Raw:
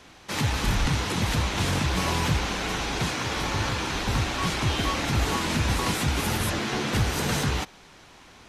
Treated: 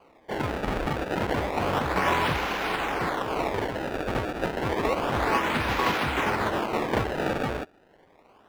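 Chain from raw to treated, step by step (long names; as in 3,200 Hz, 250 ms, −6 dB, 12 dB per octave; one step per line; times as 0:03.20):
sample-and-hold swept by an LFO 24×, swing 160% 0.3 Hz
bass and treble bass −13 dB, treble −15 dB
expander for the loud parts 1.5 to 1, over −45 dBFS
level +6 dB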